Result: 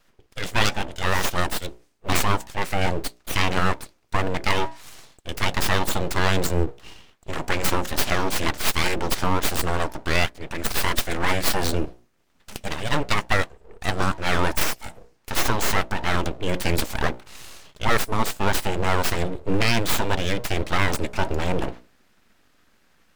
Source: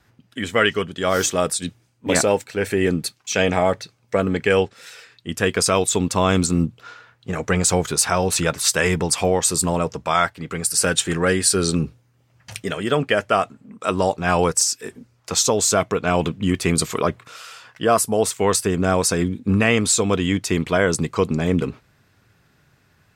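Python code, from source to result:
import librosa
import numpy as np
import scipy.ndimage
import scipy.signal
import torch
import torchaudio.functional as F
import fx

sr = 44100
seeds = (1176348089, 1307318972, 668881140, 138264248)

y = fx.tracing_dist(x, sr, depth_ms=0.14)
y = fx.hum_notches(y, sr, base_hz=60, count=8)
y = np.abs(y)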